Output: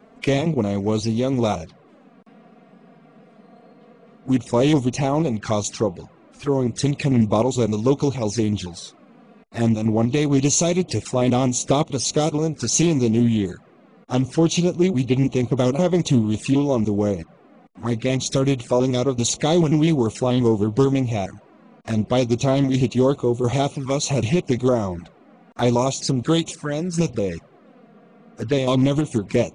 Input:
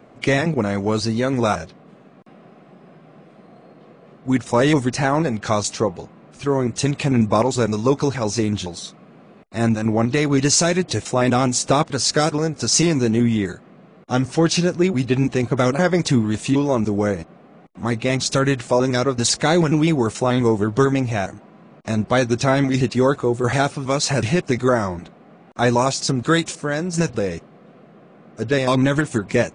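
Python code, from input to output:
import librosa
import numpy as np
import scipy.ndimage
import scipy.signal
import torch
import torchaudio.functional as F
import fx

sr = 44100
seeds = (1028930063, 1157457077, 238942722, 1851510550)

y = fx.env_flanger(x, sr, rest_ms=5.0, full_db=-17.5)
y = fx.doppler_dist(y, sr, depth_ms=0.2)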